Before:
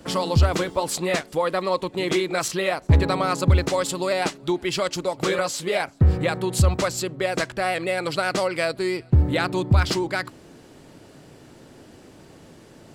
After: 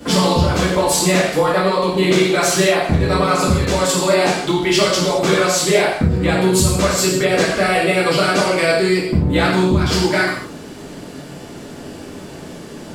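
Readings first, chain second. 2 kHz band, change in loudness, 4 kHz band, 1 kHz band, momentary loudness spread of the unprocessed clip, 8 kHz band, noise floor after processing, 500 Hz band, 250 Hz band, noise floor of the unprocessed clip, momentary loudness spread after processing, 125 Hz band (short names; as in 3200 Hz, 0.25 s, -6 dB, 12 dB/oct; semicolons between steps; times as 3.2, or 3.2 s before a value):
+8.5 dB, +7.5 dB, +9.5 dB, +7.5 dB, 6 LU, +11.0 dB, -34 dBFS, +8.5 dB, +9.5 dB, -49 dBFS, 19 LU, +3.0 dB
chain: compressor, threshold -25 dBFS, peak gain reduction 12.5 dB; non-linear reverb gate 0.26 s falling, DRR -8 dB; gain +5.5 dB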